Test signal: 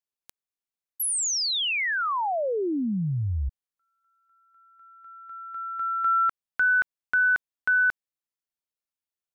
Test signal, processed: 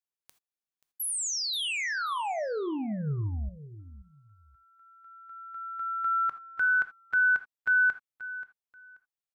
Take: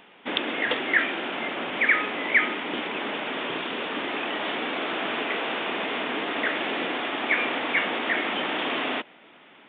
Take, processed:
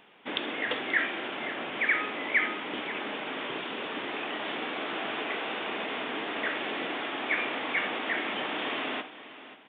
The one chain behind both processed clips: on a send: feedback delay 532 ms, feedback 23%, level -15 dB; on the sum: gated-style reverb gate 100 ms flat, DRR 10 dB; trim -5.5 dB

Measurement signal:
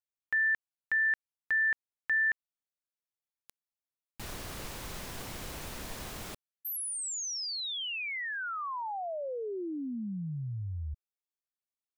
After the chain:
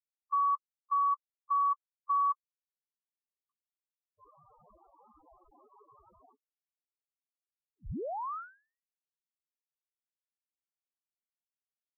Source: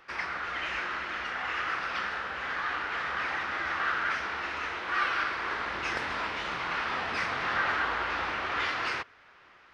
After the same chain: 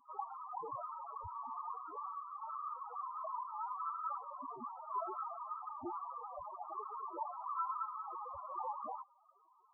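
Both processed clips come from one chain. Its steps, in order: steep high-pass 1.6 kHz 96 dB/octave; loudest bins only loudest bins 4; frequency inversion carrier 2.9 kHz

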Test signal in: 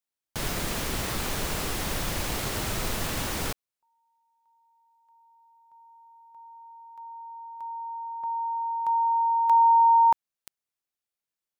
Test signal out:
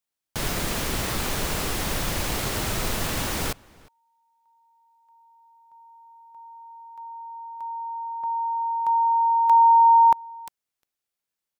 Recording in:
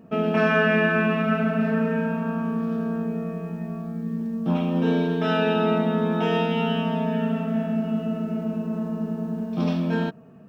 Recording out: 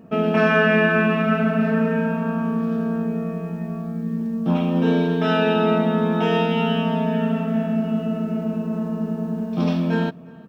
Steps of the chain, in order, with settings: echo from a far wall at 61 m, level -24 dB; trim +3 dB

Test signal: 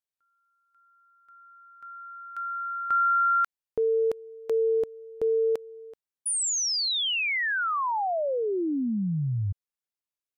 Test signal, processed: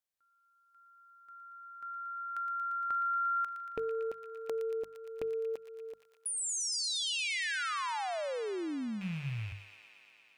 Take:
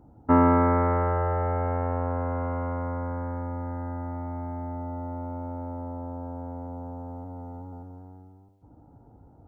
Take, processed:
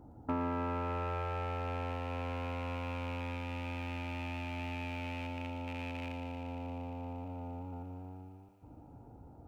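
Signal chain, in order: rattle on loud lows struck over -34 dBFS, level -27 dBFS; compression 2.5:1, threshold -40 dBFS; hum notches 50/100/150/200 Hz; feedback echo behind a high-pass 116 ms, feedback 83%, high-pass 1.8 kHz, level -7 dB

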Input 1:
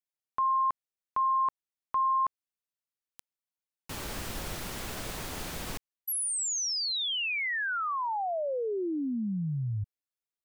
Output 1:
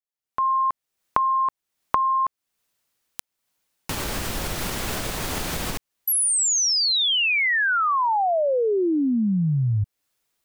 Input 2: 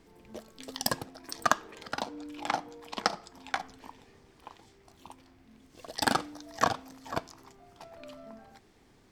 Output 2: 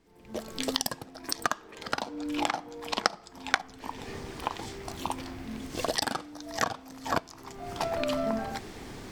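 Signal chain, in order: recorder AGC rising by 40 dB/s, up to +26 dB; trim -7 dB

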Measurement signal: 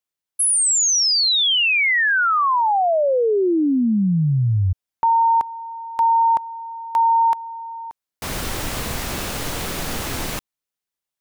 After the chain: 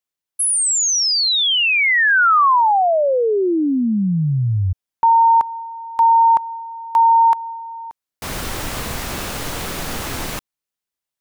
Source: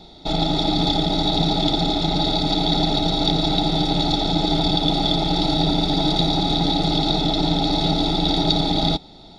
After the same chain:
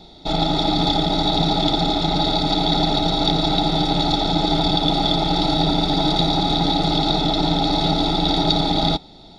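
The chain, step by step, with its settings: dynamic bell 1.2 kHz, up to +5 dB, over -32 dBFS, Q 0.95

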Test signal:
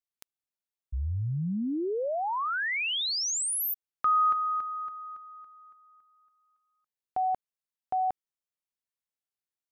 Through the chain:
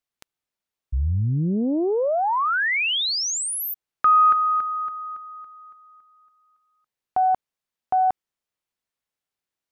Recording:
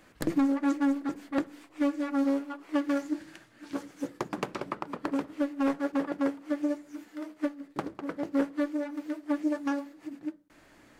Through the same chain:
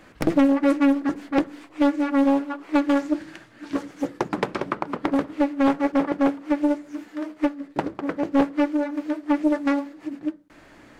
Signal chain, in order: treble shelf 5.7 kHz -7.5 dB; loudspeaker Doppler distortion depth 0.51 ms; trim +8.5 dB

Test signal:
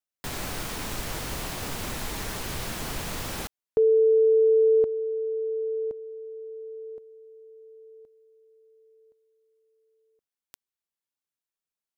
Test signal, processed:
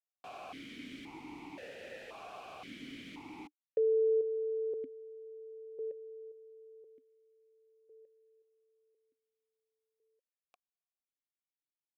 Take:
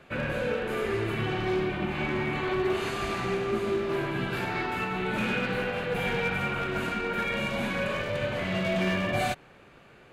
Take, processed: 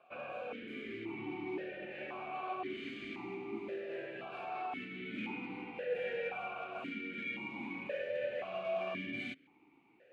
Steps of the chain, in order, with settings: stepped vowel filter 1.9 Hz

